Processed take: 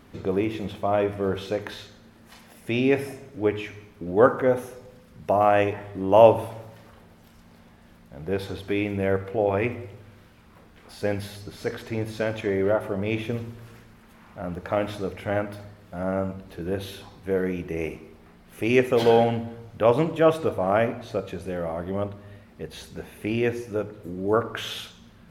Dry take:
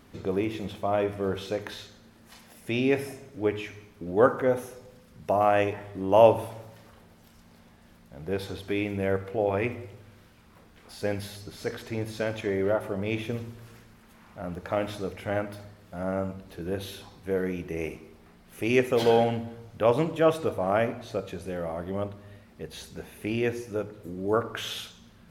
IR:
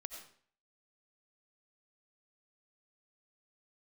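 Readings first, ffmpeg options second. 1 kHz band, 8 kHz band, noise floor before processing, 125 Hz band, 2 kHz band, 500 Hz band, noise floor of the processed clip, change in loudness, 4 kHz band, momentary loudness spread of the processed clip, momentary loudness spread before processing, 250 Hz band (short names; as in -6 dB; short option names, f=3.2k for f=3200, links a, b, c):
+3.0 dB, n/a, -55 dBFS, +3.0 dB, +2.5 dB, +3.0 dB, -52 dBFS, +3.0 dB, +1.5 dB, 19 LU, 18 LU, +3.0 dB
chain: -filter_complex "[0:a]asplit=2[a][b];[1:a]atrim=start_sample=2205,atrim=end_sample=3087,lowpass=4.3k[c];[b][c]afir=irnorm=-1:irlink=0,volume=-2.5dB[d];[a][d]amix=inputs=2:normalize=0"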